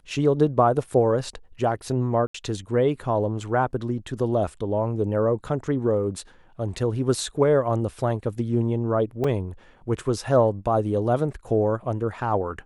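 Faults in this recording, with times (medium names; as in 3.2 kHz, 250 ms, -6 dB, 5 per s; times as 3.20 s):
2.27–2.34 s: dropout 74 ms
9.24 s: dropout 3.9 ms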